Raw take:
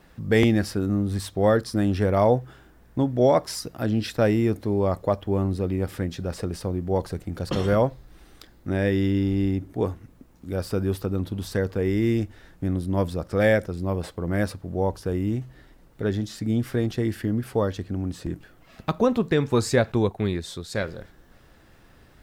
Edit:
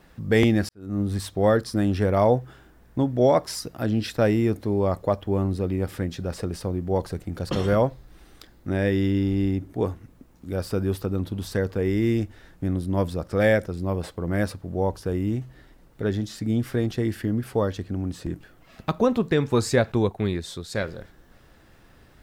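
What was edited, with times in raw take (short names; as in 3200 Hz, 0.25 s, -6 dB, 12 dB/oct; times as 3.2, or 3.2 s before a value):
0.69–1.01 fade in quadratic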